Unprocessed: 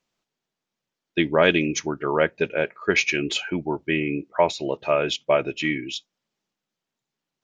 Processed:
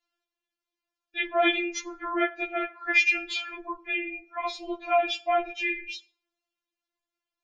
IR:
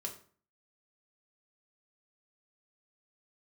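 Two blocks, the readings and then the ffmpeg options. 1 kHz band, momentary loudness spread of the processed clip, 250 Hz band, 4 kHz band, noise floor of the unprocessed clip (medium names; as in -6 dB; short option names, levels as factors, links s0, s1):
-0.5 dB, 13 LU, -8.5 dB, -4.5 dB, under -85 dBFS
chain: -filter_complex "[0:a]aeval=exprs='val(0)*sin(2*PI*120*n/s)':c=same,lowpass=f=1300:p=1,tiltshelf=f=860:g=-7.5,asplit=2[s0][s1];[1:a]atrim=start_sample=2205[s2];[s1][s2]afir=irnorm=-1:irlink=0,volume=0.668[s3];[s0][s3]amix=inputs=2:normalize=0,afftfilt=real='re*4*eq(mod(b,16),0)':imag='im*4*eq(mod(b,16),0)':win_size=2048:overlap=0.75"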